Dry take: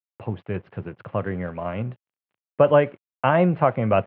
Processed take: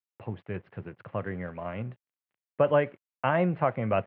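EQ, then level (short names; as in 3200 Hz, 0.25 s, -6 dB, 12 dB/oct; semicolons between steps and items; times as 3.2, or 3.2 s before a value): bell 1900 Hz +4 dB 0.57 oct; -7.0 dB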